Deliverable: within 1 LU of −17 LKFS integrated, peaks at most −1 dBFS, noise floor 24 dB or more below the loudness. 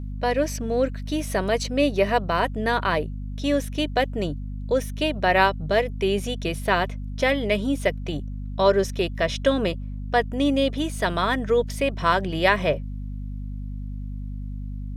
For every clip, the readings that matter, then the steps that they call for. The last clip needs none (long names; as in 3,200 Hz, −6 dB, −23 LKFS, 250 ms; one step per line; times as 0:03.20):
mains hum 50 Hz; hum harmonics up to 250 Hz; level of the hum −29 dBFS; integrated loudness −24.0 LKFS; sample peak −4.0 dBFS; target loudness −17.0 LKFS
→ mains-hum notches 50/100/150/200/250 Hz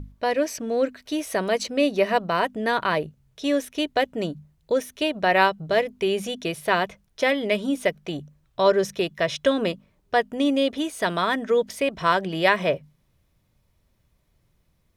mains hum none found; integrated loudness −24.0 LKFS; sample peak −4.0 dBFS; target loudness −17.0 LKFS
→ level +7 dB
brickwall limiter −1 dBFS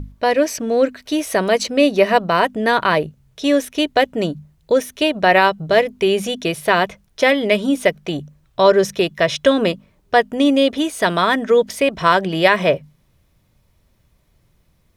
integrated loudness −17.5 LKFS; sample peak −1.0 dBFS; background noise floor −60 dBFS